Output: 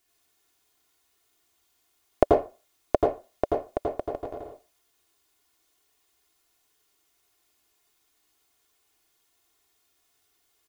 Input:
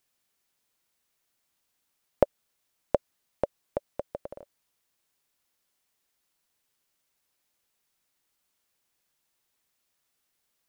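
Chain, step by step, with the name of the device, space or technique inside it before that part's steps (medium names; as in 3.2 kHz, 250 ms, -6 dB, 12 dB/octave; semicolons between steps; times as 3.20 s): microphone above a desk (comb 2.8 ms, depth 64%; reverberation RT60 0.30 s, pre-delay 81 ms, DRR -1 dB); trim +2.5 dB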